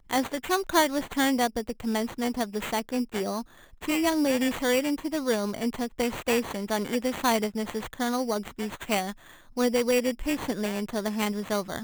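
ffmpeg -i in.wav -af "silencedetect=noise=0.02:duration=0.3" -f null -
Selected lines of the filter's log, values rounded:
silence_start: 3.42
silence_end: 3.82 | silence_duration: 0.41
silence_start: 9.12
silence_end: 9.57 | silence_duration: 0.45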